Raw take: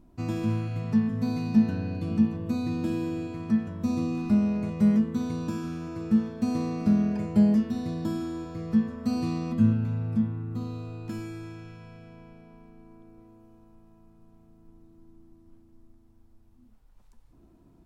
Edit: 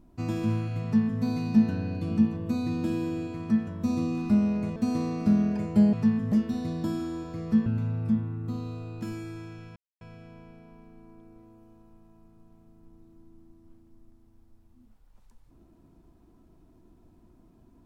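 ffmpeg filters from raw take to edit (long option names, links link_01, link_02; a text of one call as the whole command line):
ffmpeg -i in.wav -filter_complex "[0:a]asplit=6[link_01][link_02][link_03][link_04][link_05][link_06];[link_01]atrim=end=4.762[link_07];[link_02]atrim=start=6.358:end=7.532[link_08];[link_03]atrim=start=0.828:end=1.222[link_09];[link_04]atrim=start=7.528:end=8.872[link_10];[link_05]atrim=start=9.728:end=11.83,asetpts=PTS-STARTPTS,afade=type=out:start_time=2.098:duration=0.004:curve=hsin,apad=pad_dur=0.25[link_11];[link_06]atrim=start=11.83,asetpts=PTS-STARTPTS,afade=type=in:duration=0.004:curve=hsin[link_12];[link_07][link_08]acrossfade=duration=0.004:curve1=hsin:curve2=hsin[link_13];[link_13][link_09]acrossfade=duration=0.004:curve1=hsin:curve2=hsin[link_14];[link_14][link_10]acrossfade=duration=0.004:curve1=hsin:curve2=hsin[link_15];[link_11][link_12]concat=n=2:v=0:a=1[link_16];[link_15][link_16]acrossfade=duration=0.004:curve1=hsin:curve2=hsin" out.wav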